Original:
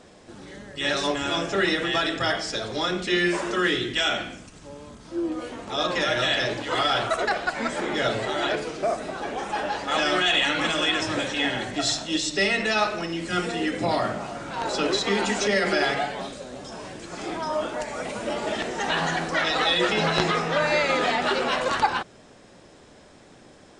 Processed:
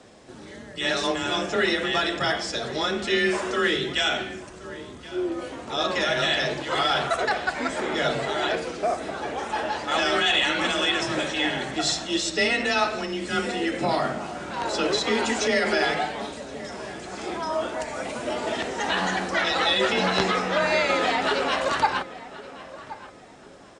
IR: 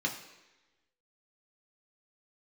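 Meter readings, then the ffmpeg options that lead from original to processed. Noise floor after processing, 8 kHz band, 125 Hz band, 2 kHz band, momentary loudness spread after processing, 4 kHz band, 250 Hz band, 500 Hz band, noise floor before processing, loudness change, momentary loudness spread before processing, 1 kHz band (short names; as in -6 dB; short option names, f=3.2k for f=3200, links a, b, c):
-44 dBFS, 0.0 dB, -2.0 dB, 0.0 dB, 14 LU, 0.0 dB, -0.5 dB, +0.5 dB, -51 dBFS, 0.0 dB, 12 LU, +0.5 dB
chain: -filter_complex "[0:a]afreqshift=22,asplit=2[a][b];[b]adelay=1074,lowpass=f=2.4k:p=1,volume=-16dB,asplit=2[c][d];[d]adelay=1074,lowpass=f=2.4k:p=1,volume=0.31,asplit=2[e][f];[f]adelay=1074,lowpass=f=2.4k:p=1,volume=0.31[g];[a][c][e][g]amix=inputs=4:normalize=0"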